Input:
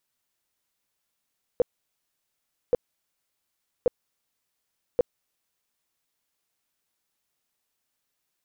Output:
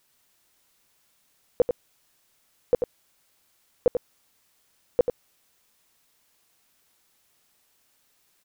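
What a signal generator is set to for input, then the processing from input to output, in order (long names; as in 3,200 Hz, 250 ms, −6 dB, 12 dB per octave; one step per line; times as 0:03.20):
tone bursts 491 Hz, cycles 9, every 1.13 s, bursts 4, −15.5 dBFS
in parallel at +0.5 dB: compressor whose output falls as the input rises −27 dBFS, ratio −0.5
on the sum: single-tap delay 90 ms −7 dB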